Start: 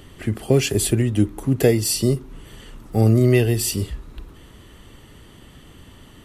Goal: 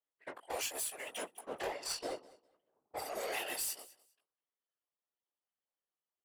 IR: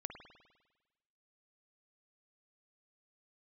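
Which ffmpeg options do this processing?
-filter_complex "[0:a]aeval=exprs='if(lt(val(0),0),0.251*val(0),val(0))':c=same,asplit=3[s0][s1][s2];[s0]afade=t=out:st=1.46:d=0.02[s3];[s1]aemphasis=mode=reproduction:type=riaa,afade=t=in:st=1.46:d=0.02,afade=t=out:st=2.96:d=0.02[s4];[s2]afade=t=in:st=2.96:d=0.02[s5];[s3][s4][s5]amix=inputs=3:normalize=0,anlmdn=15.8,highpass=f=650:w=0.5412,highpass=f=650:w=1.3066,agate=range=0.355:threshold=0.00158:ratio=16:detection=peak,highshelf=f=6200:g=12,acompressor=threshold=0.0316:ratio=16,asoftclip=type=tanh:threshold=0.0266,flanger=delay=16.5:depth=3.8:speed=0.75,afftfilt=real='hypot(re,im)*cos(2*PI*random(0))':imag='hypot(re,im)*sin(2*PI*random(1))':win_size=512:overlap=0.75,aecho=1:1:203|406:0.0891|0.0178,volume=2.82"

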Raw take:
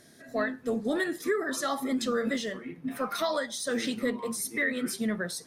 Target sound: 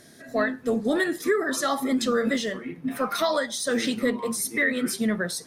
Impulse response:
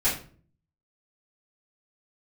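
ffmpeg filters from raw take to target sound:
-af "volume=1.78"

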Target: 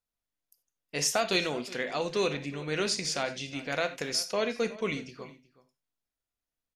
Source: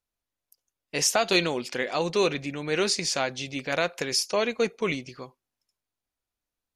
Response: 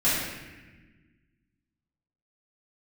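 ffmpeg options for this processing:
-filter_complex "[0:a]asplit=2[s0][s1];[s1]adelay=367.3,volume=0.126,highshelf=f=4000:g=-8.27[s2];[s0][s2]amix=inputs=2:normalize=0,asplit=2[s3][s4];[1:a]atrim=start_sample=2205,atrim=end_sample=4410[s5];[s4][s5]afir=irnorm=-1:irlink=0,volume=0.1[s6];[s3][s6]amix=inputs=2:normalize=0,volume=0.531"

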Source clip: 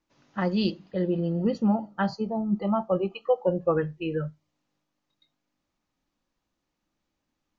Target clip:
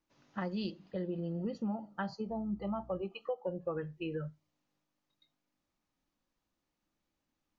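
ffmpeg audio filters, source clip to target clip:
-filter_complex "[0:a]acompressor=threshold=0.0282:ratio=3,asettb=1/sr,asplit=3[s0][s1][s2];[s0]atrim=end=2.304[s3];[s1]atrim=start=2.3:end=3.02,asetpts=PTS-STARTPTS,afade=t=in:d=0.004:c=qsin,afade=t=out:st=0.716:d=0.004:c=qsin,aeval=exprs='val(0)+0.00355*(sin(2*PI*60*n/s)+sin(2*PI*2*60*n/s)/2+sin(2*PI*3*60*n/s)/3+sin(2*PI*4*60*n/s)/4+sin(2*PI*5*60*n/s)/5)':c=same[s4];[s2]atrim=start=3.016[s5];[s3][s4]acrossfade=d=0.004:c1=hsin:c2=qsin[s6];[s6][s5]acrossfade=d=0.004:c1=qsin:c2=hsin,volume=0.596"

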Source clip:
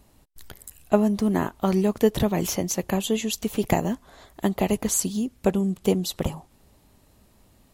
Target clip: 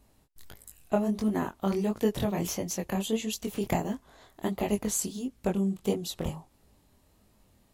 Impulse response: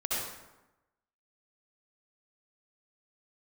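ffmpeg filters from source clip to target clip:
-af "flanger=delay=18.5:depth=7:speed=1.5,volume=0.708"

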